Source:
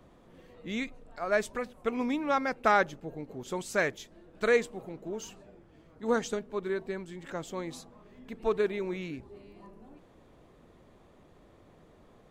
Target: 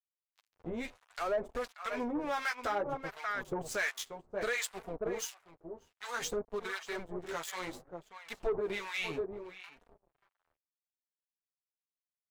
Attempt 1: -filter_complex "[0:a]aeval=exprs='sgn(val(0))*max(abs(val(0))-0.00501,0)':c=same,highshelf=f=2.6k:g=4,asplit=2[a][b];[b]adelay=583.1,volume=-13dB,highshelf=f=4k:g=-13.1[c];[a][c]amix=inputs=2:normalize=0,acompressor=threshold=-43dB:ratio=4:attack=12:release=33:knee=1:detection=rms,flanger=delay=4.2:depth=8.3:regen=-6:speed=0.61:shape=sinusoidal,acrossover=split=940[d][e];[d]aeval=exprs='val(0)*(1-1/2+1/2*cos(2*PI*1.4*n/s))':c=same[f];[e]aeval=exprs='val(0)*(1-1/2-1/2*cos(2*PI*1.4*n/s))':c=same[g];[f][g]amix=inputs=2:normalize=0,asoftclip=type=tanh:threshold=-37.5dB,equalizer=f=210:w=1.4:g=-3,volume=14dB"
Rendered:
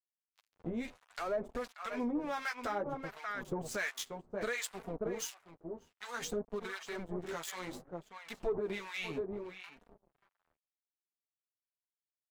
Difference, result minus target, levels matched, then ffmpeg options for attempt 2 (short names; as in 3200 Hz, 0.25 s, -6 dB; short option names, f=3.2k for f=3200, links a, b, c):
compressor: peak gain reduction +4.5 dB; 250 Hz band +4.0 dB
-filter_complex "[0:a]aeval=exprs='sgn(val(0))*max(abs(val(0))-0.00501,0)':c=same,highshelf=f=2.6k:g=4,asplit=2[a][b];[b]adelay=583.1,volume=-13dB,highshelf=f=4k:g=-13.1[c];[a][c]amix=inputs=2:normalize=0,acompressor=threshold=-37dB:ratio=4:attack=12:release=33:knee=1:detection=rms,flanger=delay=4.2:depth=8.3:regen=-6:speed=0.61:shape=sinusoidal,acrossover=split=940[d][e];[d]aeval=exprs='val(0)*(1-1/2+1/2*cos(2*PI*1.4*n/s))':c=same[f];[e]aeval=exprs='val(0)*(1-1/2-1/2*cos(2*PI*1.4*n/s))':c=same[g];[f][g]amix=inputs=2:normalize=0,asoftclip=type=tanh:threshold=-37.5dB,equalizer=f=210:w=1.4:g=-10,volume=14dB"